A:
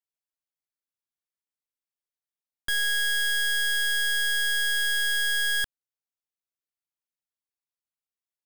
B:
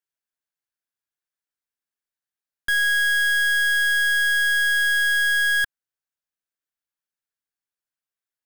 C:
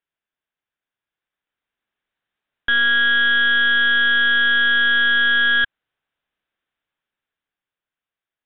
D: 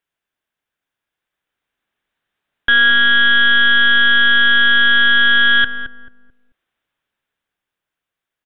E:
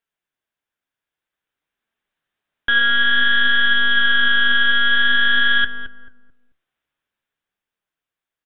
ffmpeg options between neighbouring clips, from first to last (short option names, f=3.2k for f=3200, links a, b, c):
-af "equalizer=f=1.6k:w=3.6:g=8"
-af "dynaudnorm=f=200:g=17:m=8dB,aresample=8000,asoftclip=type=tanh:threshold=-22dB,aresample=44100,volume=6.5dB"
-filter_complex "[0:a]asplit=2[a][b];[b]adelay=219,lowpass=f=810:p=1,volume=-7dB,asplit=2[c][d];[d]adelay=219,lowpass=f=810:p=1,volume=0.36,asplit=2[e][f];[f]adelay=219,lowpass=f=810:p=1,volume=0.36,asplit=2[g][h];[h]adelay=219,lowpass=f=810:p=1,volume=0.36[i];[a][c][e][g][i]amix=inputs=5:normalize=0,volume=5.5dB"
-af "flanger=delay=4.4:depth=9.9:regen=72:speed=0.52:shape=sinusoidal"